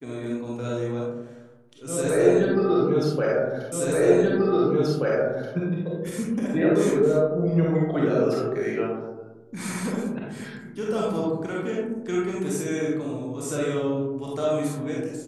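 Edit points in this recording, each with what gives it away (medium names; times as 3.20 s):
3.72 s: repeat of the last 1.83 s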